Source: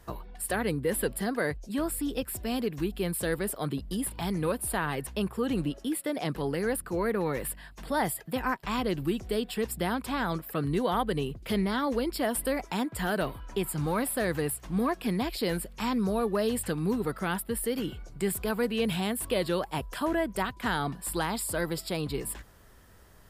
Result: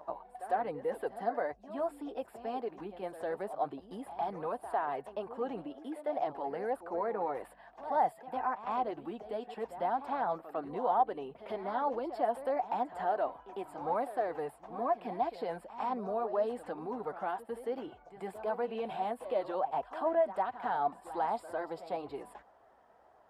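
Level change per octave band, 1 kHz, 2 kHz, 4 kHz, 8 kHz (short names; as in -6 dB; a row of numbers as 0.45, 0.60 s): +2.0 dB, -11.5 dB, -18.5 dB, under -25 dB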